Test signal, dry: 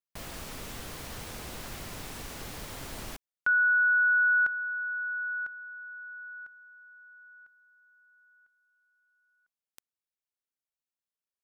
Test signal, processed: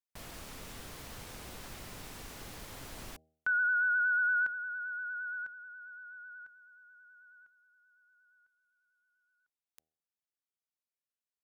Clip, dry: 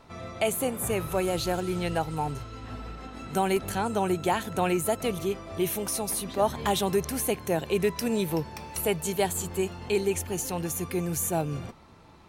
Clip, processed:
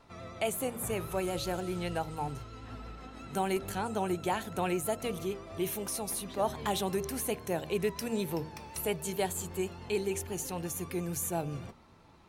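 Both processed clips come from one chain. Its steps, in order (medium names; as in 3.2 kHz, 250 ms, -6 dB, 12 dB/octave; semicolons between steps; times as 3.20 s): wow and flutter 8.8 Hz 38 cents; de-hum 78.89 Hz, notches 10; trim -5.5 dB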